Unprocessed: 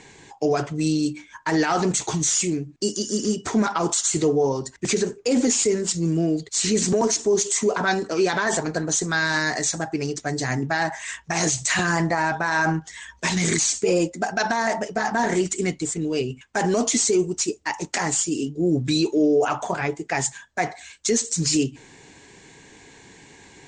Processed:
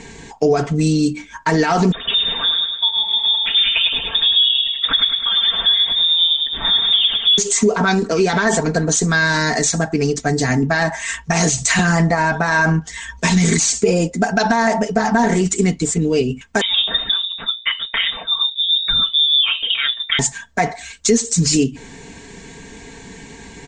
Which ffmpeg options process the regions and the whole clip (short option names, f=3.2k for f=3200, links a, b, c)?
-filter_complex "[0:a]asettb=1/sr,asplit=3[a][b][c];[a]atrim=end=1.924[d];[b]atrim=start=1.92:end=7.38,asetpts=PTS-STARTPTS,afade=t=in:d=0.004:c=qsin,afade=t=out:st=5.456:d=0.004:c=qsin,aecho=1:1:104|208|312|416|520|624:0.501|0.241|0.115|0.0554|0.0266|0.0128,atrim=end_sample=240786,lowpass=f=3.2k:t=q:w=0.5098,lowpass=f=3.2k:t=q:w=0.6013,lowpass=f=3.2k:t=q:w=0.9,lowpass=f=3.2k:t=q:w=2.563,afreqshift=-3800[e];[c]atrim=start=7.376[f];[d][e]acrossfade=d=0.004:c1=hsin:c2=qsin[g];[g][f]acrossfade=d=0.004:c1=qsin:c2=hsin,asettb=1/sr,asplit=3[h][i][j];[h]atrim=end=16.614[k];[i]atrim=start=16.61:end=20.19,asetpts=PTS-STARTPTS,afade=t=in:d=0.004:c=qsin,afade=t=out:st=3.576:d=0.004:c=qsin,bandreject=f=60:t=h:w=6,bandreject=f=120:t=h:w=6,bandreject=f=180:t=h:w=6,bandreject=f=240:t=h:w=6,bandreject=f=300:t=h:w=6,bandreject=f=360:t=h:w=6,bandreject=f=420:t=h:w=6,lowpass=f=3.3k:t=q:w=0.5098,lowpass=f=3.3k:t=q:w=0.6013,lowpass=f=3.3k:t=q:w=0.9,lowpass=f=3.3k:t=q:w=2.563,afreqshift=-3900[l];[j]atrim=start=20.186[m];[k][l]acrossfade=d=0.004:c1=hsin:c2=qsin[n];[n][m]acrossfade=d=0.004:c1=qsin:c2=hsin,lowshelf=f=190:g=11,aecho=1:1:4.4:0.55,acompressor=threshold=-22dB:ratio=2,volume=7dB"